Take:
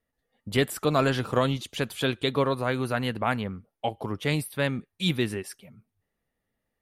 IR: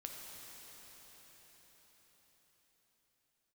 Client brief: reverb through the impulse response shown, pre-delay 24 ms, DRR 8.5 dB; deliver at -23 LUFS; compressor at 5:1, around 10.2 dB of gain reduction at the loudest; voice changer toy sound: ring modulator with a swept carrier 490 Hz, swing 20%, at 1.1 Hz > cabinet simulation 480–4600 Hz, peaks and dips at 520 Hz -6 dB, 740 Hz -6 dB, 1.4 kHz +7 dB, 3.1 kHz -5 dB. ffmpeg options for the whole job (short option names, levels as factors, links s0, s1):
-filter_complex "[0:a]acompressor=threshold=0.0316:ratio=5,asplit=2[s0][s1];[1:a]atrim=start_sample=2205,adelay=24[s2];[s1][s2]afir=irnorm=-1:irlink=0,volume=0.501[s3];[s0][s3]amix=inputs=2:normalize=0,aeval=exprs='val(0)*sin(2*PI*490*n/s+490*0.2/1.1*sin(2*PI*1.1*n/s))':c=same,highpass=480,equalizer=f=520:t=q:w=4:g=-6,equalizer=f=740:t=q:w=4:g=-6,equalizer=f=1400:t=q:w=4:g=7,equalizer=f=3100:t=q:w=4:g=-5,lowpass=f=4600:w=0.5412,lowpass=f=4600:w=1.3066,volume=7.08"